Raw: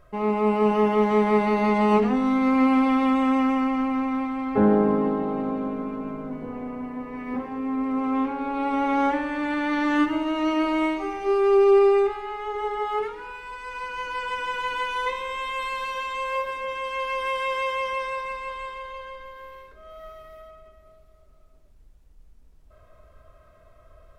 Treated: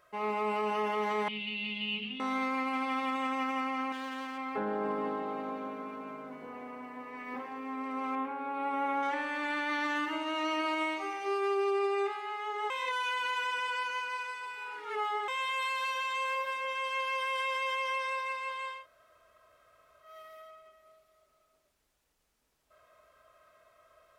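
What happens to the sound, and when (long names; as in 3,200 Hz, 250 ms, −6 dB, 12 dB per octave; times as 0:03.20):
0:01.28–0:02.20: drawn EQ curve 180 Hz 0 dB, 640 Hz −28 dB, 1,300 Hz −29 dB, 1,800 Hz −22 dB, 2,900 Hz +12 dB, 6,100 Hz −24 dB
0:03.92–0:04.38: hard clipping −27 dBFS
0:08.15–0:09.03: parametric band 5,100 Hz −14 dB 1.7 octaves
0:12.70–0:15.28: reverse
0:18.79–0:20.09: fill with room tone, crossfade 0.16 s
whole clip: high-pass filter 1,300 Hz 6 dB per octave; brickwall limiter −24.5 dBFS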